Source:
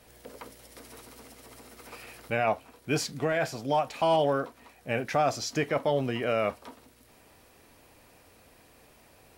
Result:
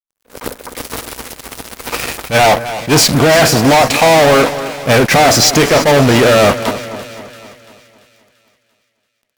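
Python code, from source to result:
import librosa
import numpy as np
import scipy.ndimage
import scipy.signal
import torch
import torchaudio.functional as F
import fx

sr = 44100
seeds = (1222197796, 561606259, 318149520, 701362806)

y = fx.fuzz(x, sr, gain_db=40.0, gate_db=-46.0)
y = fx.echo_split(y, sr, split_hz=1800.0, low_ms=255, high_ms=340, feedback_pct=52, wet_db=-13)
y = fx.attack_slew(y, sr, db_per_s=290.0)
y = y * 10.0 ** (6.5 / 20.0)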